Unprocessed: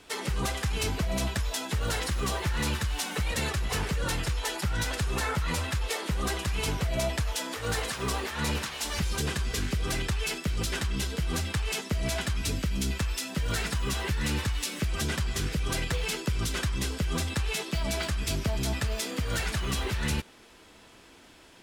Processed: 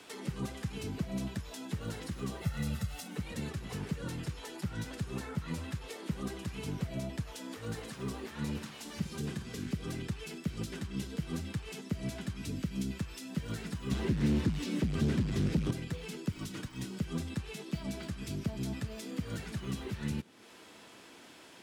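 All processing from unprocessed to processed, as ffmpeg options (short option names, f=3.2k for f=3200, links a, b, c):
-filter_complex "[0:a]asettb=1/sr,asplit=3[a][b][c];[a]atrim=end=2.414[d];[b]atrim=start=2.41:end=3.08,asetpts=PTS-STARTPTS,afade=t=in:d=0.004:c=qsin,afade=t=out:st=0.666:d=0.004:c=qsin,highshelf=f=11k:g=9,aecho=1:1:1.5:0.82,atrim=end_sample=29547[e];[c]atrim=start=3.076[f];[d][e]acrossfade=d=0.004:c1=hsin:c2=qsin[g];[g][f]acrossfade=d=0.004:c1=qsin:c2=hsin,asettb=1/sr,asplit=3[h][i][j];[h]atrim=end=8.584[k];[i]atrim=start=8.58:end=9.65,asetpts=PTS-STARTPTS,afade=t=in:d=0.004:c=qsin,afade=t=out:st=1.066:d=0.004:c=qsin,highpass=75,asplit=2[l][m];[m]adelay=50,volume=-12dB[n];[l][n]amix=inputs=2:normalize=0,atrim=end_sample=47187[o];[j]atrim=start=9.646[p];[k][o]acrossfade=d=0.004:c1=hsin:c2=qsin[q];[q][p]acrossfade=d=0.004:c1=qsin:c2=hsin,asettb=1/sr,asplit=3[r][s][t];[r]atrim=end=13.914[u];[s]atrim=start=13.91:end=15.71,asetpts=PTS-STARTPTS,afade=t=in:d=0.004:c=qsin,afade=t=out:st=1.796:d=0.004:c=qsin,acrossover=split=5900[v][w];[w]acompressor=threshold=-45dB:ratio=4:attack=1:release=60[x];[v][x]amix=inputs=2:normalize=0,equalizer=f=15k:w=0.69:g=-4.5,aeval=exprs='0.133*sin(PI/2*2.82*val(0)/0.133)':c=same[y];[t]atrim=start=15.706[z];[u][y]acrossfade=d=0.004:c1=hsin:c2=qsin[aa];[aa][z]acrossfade=d=0.004:c1=qsin:c2=hsin,asettb=1/sr,asplit=3[ab][ac][ad];[ab]atrim=end=16.314[ae];[ac]atrim=start=16.31:end=17,asetpts=PTS-STARTPTS,afade=t=in:d=0.004:c=qsin,afade=t=out:st=0.686:d=0.004:c=qsin,afreqshift=-69,acrusher=bits=8:mode=log:mix=0:aa=0.000001[af];[ad]atrim=start=16.996[ag];[ae][af]acrossfade=d=0.004:c1=hsin:c2=qsin[ah];[ah][ag]acrossfade=d=0.004:c1=qsin:c2=hsin,highpass=150,acrossover=split=310[ai][aj];[aj]acompressor=threshold=-52dB:ratio=3[ak];[ai][ak]amix=inputs=2:normalize=0,volume=1dB"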